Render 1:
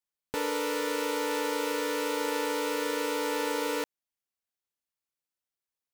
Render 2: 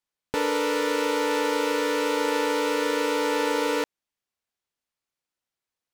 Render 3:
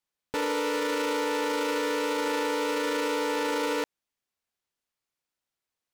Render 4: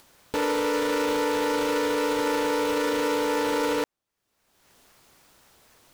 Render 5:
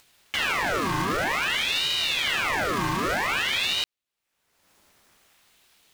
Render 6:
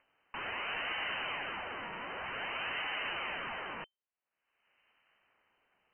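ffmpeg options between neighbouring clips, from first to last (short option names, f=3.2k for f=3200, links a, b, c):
-af "highshelf=f=9.2k:g=-11,volume=6dB"
-af "alimiter=limit=-20.5dB:level=0:latency=1:release=13"
-filter_complex "[0:a]asplit=2[a][b];[b]acrusher=samples=14:mix=1:aa=0.000001:lfo=1:lforange=8.4:lforate=3.8,volume=-5dB[c];[a][c]amix=inputs=2:normalize=0,acompressor=mode=upward:threshold=-35dB:ratio=2.5"
-filter_complex "[0:a]asplit=2[a][b];[b]acrusher=bits=4:mix=0:aa=0.000001,volume=-11.5dB[c];[a][c]amix=inputs=2:normalize=0,aeval=exprs='val(0)*sin(2*PI*2000*n/s+2000*0.7/0.52*sin(2*PI*0.52*n/s))':c=same"
-af "aeval=exprs='(mod(10.6*val(0)+1,2)-1)/10.6':c=same,lowpass=f=2.6k:t=q:w=0.5098,lowpass=f=2.6k:t=q:w=0.6013,lowpass=f=2.6k:t=q:w=0.9,lowpass=f=2.6k:t=q:w=2.563,afreqshift=-3100,volume=-8dB"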